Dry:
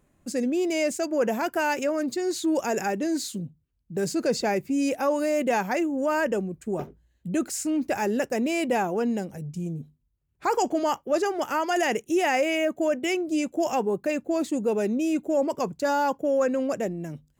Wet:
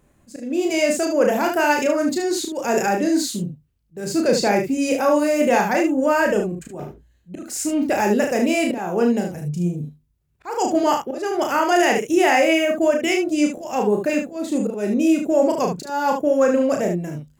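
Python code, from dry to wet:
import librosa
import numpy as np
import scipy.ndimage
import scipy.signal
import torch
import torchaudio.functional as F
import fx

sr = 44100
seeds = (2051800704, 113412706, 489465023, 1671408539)

y = fx.auto_swell(x, sr, attack_ms=275.0)
y = fx.room_early_taps(y, sr, ms=(34, 74), db=(-4.0, -6.5))
y = F.gain(torch.from_numpy(y), 5.0).numpy()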